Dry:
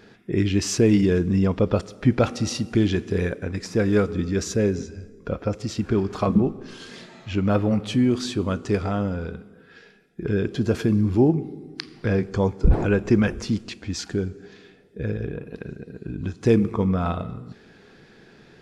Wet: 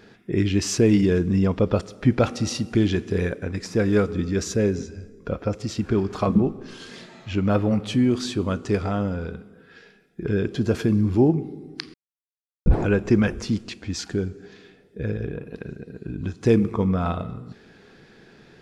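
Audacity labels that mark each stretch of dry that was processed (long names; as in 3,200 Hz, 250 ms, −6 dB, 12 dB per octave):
11.940000	12.660000	silence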